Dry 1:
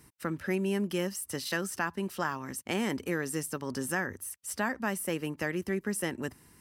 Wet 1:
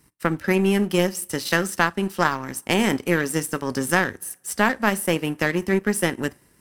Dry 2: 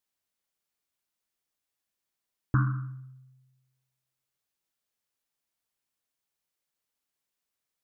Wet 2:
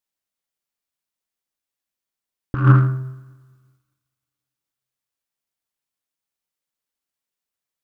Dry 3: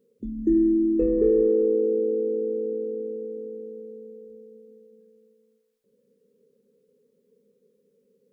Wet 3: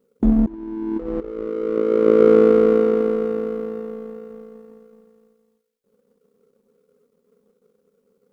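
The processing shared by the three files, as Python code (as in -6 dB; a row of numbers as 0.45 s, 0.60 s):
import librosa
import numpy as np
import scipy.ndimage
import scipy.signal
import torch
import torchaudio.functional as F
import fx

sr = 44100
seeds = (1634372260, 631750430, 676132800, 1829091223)

y = fx.rev_double_slope(x, sr, seeds[0], early_s=0.32, late_s=2.7, knee_db=-22, drr_db=12.0)
y = fx.over_compress(y, sr, threshold_db=-28.0, ratio=-0.5)
y = fx.power_curve(y, sr, exponent=1.4)
y = librosa.util.normalize(y) * 10.0 ** (-1.5 / 20.0)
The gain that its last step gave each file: +14.0 dB, +18.5 dB, +14.5 dB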